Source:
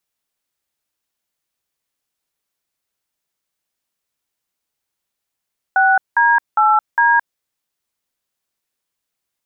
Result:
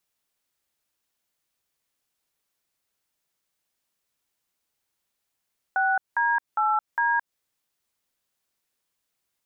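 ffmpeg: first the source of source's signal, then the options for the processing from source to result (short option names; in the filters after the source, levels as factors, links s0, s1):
-f lavfi -i "aevalsrc='0.237*clip(min(mod(t,0.406),0.218-mod(t,0.406))/0.002,0,1)*(eq(floor(t/0.406),0)*(sin(2*PI*770*mod(t,0.406))+sin(2*PI*1477*mod(t,0.406)))+eq(floor(t/0.406),1)*(sin(2*PI*941*mod(t,0.406))+sin(2*PI*1633*mod(t,0.406)))+eq(floor(t/0.406),2)*(sin(2*PI*852*mod(t,0.406))+sin(2*PI*1336*mod(t,0.406)))+eq(floor(t/0.406),3)*(sin(2*PI*941*mod(t,0.406))+sin(2*PI*1633*mod(t,0.406))))':d=1.624:s=44100"
-af "alimiter=limit=0.15:level=0:latency=1:release=162"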